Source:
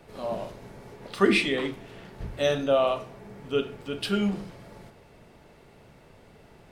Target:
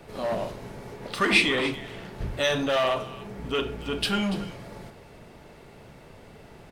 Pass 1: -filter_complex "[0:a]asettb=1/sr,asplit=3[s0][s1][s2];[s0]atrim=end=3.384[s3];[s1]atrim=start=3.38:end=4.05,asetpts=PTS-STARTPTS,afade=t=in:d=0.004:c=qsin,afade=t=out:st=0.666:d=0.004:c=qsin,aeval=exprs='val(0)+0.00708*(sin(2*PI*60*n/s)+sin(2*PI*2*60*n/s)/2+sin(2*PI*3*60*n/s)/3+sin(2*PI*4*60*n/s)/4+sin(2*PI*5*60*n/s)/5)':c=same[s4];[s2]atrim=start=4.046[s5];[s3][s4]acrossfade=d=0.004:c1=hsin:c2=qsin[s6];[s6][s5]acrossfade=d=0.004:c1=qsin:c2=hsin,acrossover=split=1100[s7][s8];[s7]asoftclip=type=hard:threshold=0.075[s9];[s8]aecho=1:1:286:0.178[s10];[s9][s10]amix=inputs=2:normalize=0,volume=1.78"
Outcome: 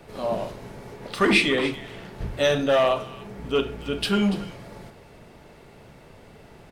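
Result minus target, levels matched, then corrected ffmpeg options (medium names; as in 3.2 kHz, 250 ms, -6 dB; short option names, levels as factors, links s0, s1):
hard clipper: distortion -6 dB
-filter_complex "[0:a]asettb=1/sr,asplit=3[s0][s1][s2];[s0]atrim=end=3.384[s3];[s1]atrim=start=3.38:end=4.05,asetpts=PTS-STARTPTS,afade=t=in:d=0.004:c=qsin,afade=t=out:st=0.666:d=0.004:c=qsin,aeval=exprs='val(0)+0.00708*(sin(2*PI*60*n/s)+sin(2*PI*2*60*n/s)/2+sin(2*PI*3*60*n/s)/3+sin(2*PI*4*60*n/s)/4+sin(2*PI*5*60*n/s)/5)':c=same[s4];[s2]atrim=start=4.046[s5];[s3][s4]acrossfade=d=0.004:c1=hsin:c2=qsin[s6];[s6][s5]acrossfade=d=0.004:c1=qsin:c2=hsin,acrossover=split=1100[s7][s8];[s7]asoftclip=type=hard:threshold=0.0316[s9];[s8]aecho=1:1:286:0.178[s10];[s9][s10]amix=inputs=2:normalize=0,volume=1.78"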